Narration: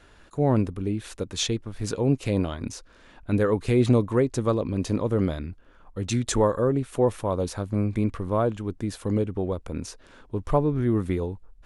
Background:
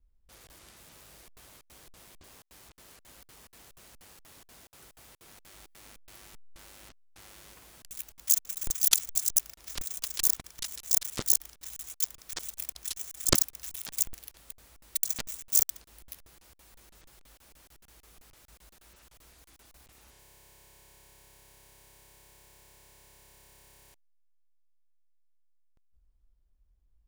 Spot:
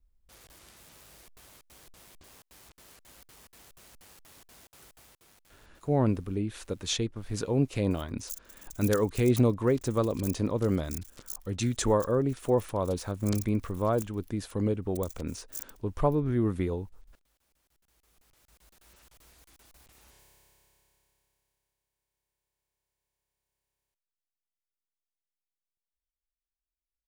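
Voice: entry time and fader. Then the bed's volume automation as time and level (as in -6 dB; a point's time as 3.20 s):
5.50 s, -3.5 dB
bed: 4.93 s -0.5 dB
5.90 s -16.5 dB
17.62 s -16.5 dB
18.92 s -1 dB
20.16 s -1 dB
21.85 s -29.5 dB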